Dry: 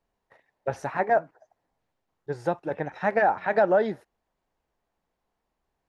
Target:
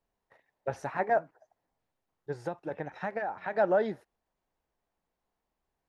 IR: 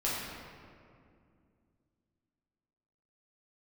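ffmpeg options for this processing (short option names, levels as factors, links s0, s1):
-filter_complex "[0:a]asplit=3[s0][s1][s2];[s0]afade=t=out:st=2.38:d=0.02[s3];[s1]acompressor=threshold=0.0501:ratio=6,afade=t=in:st=2.38:d=0.02,afade=t=out:st=3.58:d=0.02[s4];[s2]afade=t=in:st=3.58:d=0.02[s5];[s3][s4][s5]amix=inputs=3:normalize=0,volume=0.596"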